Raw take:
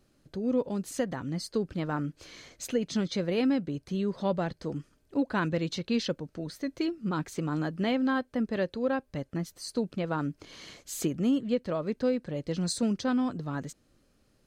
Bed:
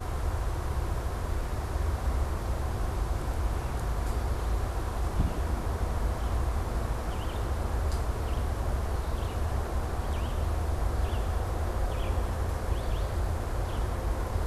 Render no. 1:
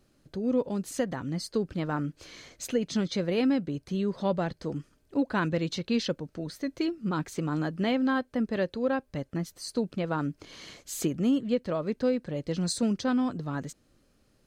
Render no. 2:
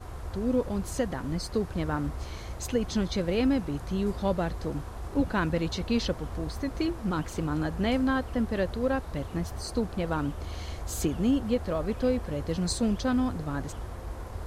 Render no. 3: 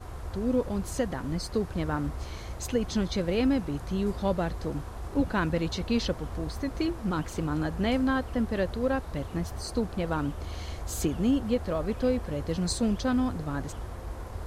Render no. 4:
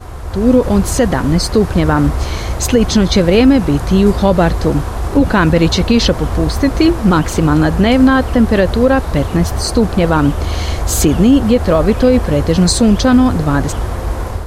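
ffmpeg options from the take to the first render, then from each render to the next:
ffmpeg -i in.wav -af "volume=1dB" out.wav
ffmpeg -i in.wav -i bed.wav -filter_complex "[1:a]volume=-7.5dB[link_01];[0:a][link_01]amix=inputs=2:normalize=0" out.wav
ffmpeg -i in.wav -af anull out.wav
ffmpeg -i in.wav -af "dynaudnorm=framelen=260:gausssize=3:maxgain=8dB,alimiter=level_in=11dB:limit=-1dB:release=50:level=0:latency=1" out.wav

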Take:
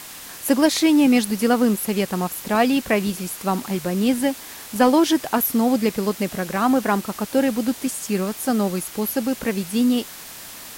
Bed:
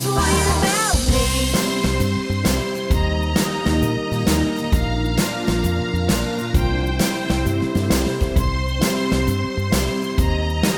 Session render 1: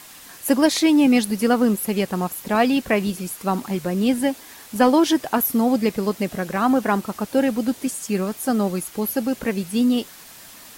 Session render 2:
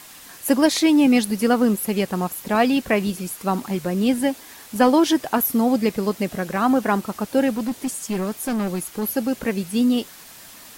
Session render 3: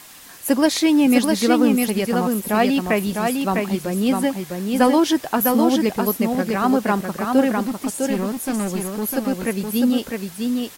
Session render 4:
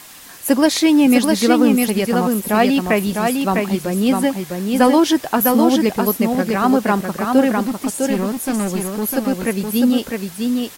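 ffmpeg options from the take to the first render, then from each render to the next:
ffmpeg -i in.wav -af "afftdn=noise_reduction=6:noise_floor=-38" out.wav
ffmpeg -i in.wav -filter_complex "[0:a]asettb=1/sr,asplit=3[link_01][link_02][link_03];[link_01]atrim=end=7.564[link_04];[link_02]atrim=start=7.56:end=9.03,asetpts=PTS-STARTPTS,afade=type=in:duration=0.004:curve=qsin,afade=type=out:start_time=1.466:duration=0.004:curve=qsin,asoftclip=type=hard:threshold=-20dB[link_05];[link_03]atrim=start=9.026[link_06];[link_04][link_05]acrossfade=duration=0.004:curve1=hsin:curve2=qsin[link_07];[link_07][link_06]acrossfade=duration=0.004:curve1=qsin:curve2=hsin" out.wav
ffmpeg -i in.wav -af "aecho=1:1:654:0.631" out.wav
ffmpeg -i in.wav -af "volume=3dB,alimiter=limit=-3dB:level=0:latency=1" out.wav

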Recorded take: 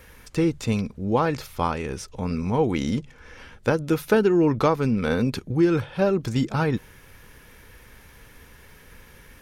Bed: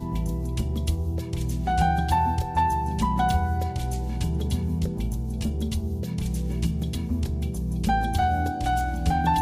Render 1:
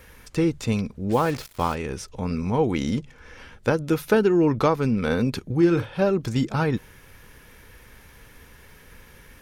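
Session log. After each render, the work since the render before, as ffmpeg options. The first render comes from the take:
ffmpeg -i in.wav -filter_complex "[0:a]asplit=3[link_01][link_02][link_03];[link_01]afade=type=out:start_time=1.09:duration=0.02[link_04];[link_02]acrusher=bits=5:mix=0:aa=0.5,afade=type=in:start_time=1.09:duration=0.02,afade=type=out:start_time=1.74:duration=0.02[link_05];[link_03]afade=type=in:start_time=1.74:duration=0.02[link_06];[link_04][link_05][link_06]amix=inputs=3:normalize=0,asettb=1/sr,asplit=3[link_07][link_08][link_09];[link_07]atrim=end=5.564[link_10];[link_08]atrim=start=5.56:end=6.03,asetpts=PTS-STARTPTS,afade=type=in:duration=0.004:curve=qsin,afade=type=out:start_time=0.466:duration=0.004:curve=qsin,asplit=2[link_11][link_12];[link_12]adelay=47,volume=-10.5dB[link_13];[link_11][link_13]amix=inputs=2:normalize=0,atrim=end_sample=20727[link_14];[link_09]atrim=start=6.026[link_15];[link_10][link_14]acrossfade=duration=0.004:curve1=hsin:curve2=qsin[link_16];[link_16][link_15]acrossfade=duration=0.004:curve1=qsin:curve2=hsin" out.wav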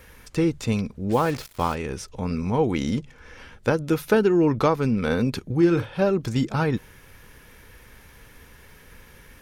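ffmpeg -i in.wav -af anull out.wav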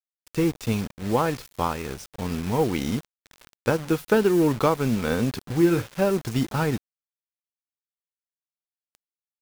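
ffmpeg -i in.wav -af "acrusher=bits=5:mix=0:aa=0.000001,aeval=exprs='sgn(val(0))*max(abs(val(0))-0.015,0)':channel_layout=same" out.wav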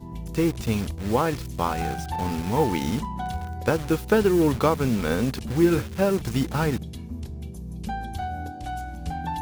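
ffmpeg -i in.wav -i bed.wav -filter_complex "[1:a]volume=-8dB[link_01];[0:a][link_01]amix=inputs=2:normalize=0" out.wav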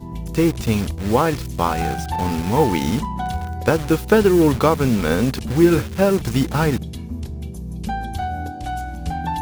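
ffmpeg -i in.wav -af "volume=5.5dB,alimiter=limit=-3dB:level=0:latency=1" out.wav

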